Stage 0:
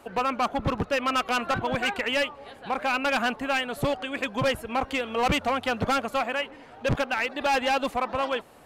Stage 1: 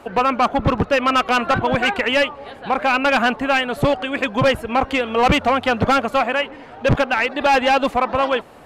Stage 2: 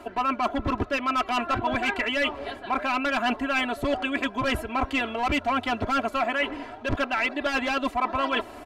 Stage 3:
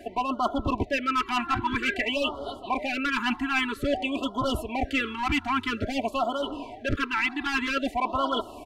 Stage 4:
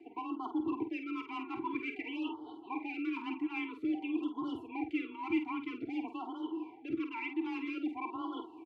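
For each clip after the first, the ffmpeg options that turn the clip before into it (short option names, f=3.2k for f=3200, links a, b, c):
-af "highshelf=f=5.5k:g=-9.5,volume=9dB"
-af "aecho=1:1:3:0.89,areverse,acompressor=threshold=-23dB:ratio=6,areverse"
-af "afftfilt=real='re*(1-between(b*sr/1024,500*pow(2100/500,0.5+0.5*sin(2*PI*0.51*pts/sr))/1.41,500*pow(2100/500,0.5+0.5*sin(2*PI*0.51*pts/sr))*1.41))':imag='im*(1-between(b*sr/1024,500*pow(2100/500,0.5+0.5*sin(2*PI*0.51*pts/sr))/1.41,500*pow(2100/500,0.5+0.5*sin(2*PI*0.51*pts/sr))*1.41))':win_size=1024:overlap=0.75"
-filter_complex "[0:a]asplit=3[a][b][c];[a]bandpass=f=300:t=q:w=8,volume=0dB[d];[b]bandpass=f=870:t=q:w=8,volume=-6dB[e];[c]bandpass=f=2.24k:t=q:w=8,volume=-9dB[f];[d][e][f]amix=inputs=3:normalize=0,afreqshift=26,asplit=2[g][h];[h]adelay=49,volume=-8.5dB[i];[g][i]amix=inputs=2:normalize=0"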